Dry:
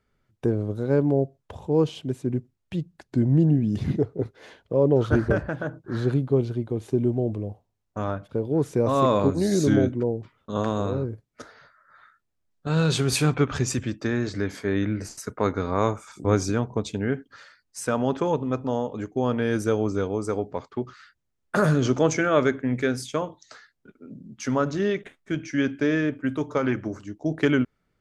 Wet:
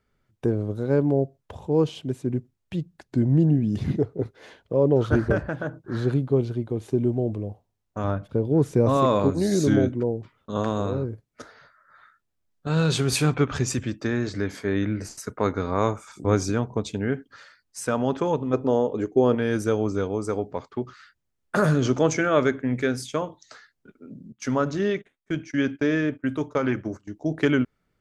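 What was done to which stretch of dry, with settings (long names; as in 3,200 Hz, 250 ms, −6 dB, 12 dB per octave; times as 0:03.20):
0:08.04–0:08.97: low-shelf EQ 280 Hz +6 dB
0:18.53–0:19.35: parametric band 400 Hz +9 dB 0.99 octaves
0:24.32–0:27.13: noise gate −39 dBFS, range −17 dB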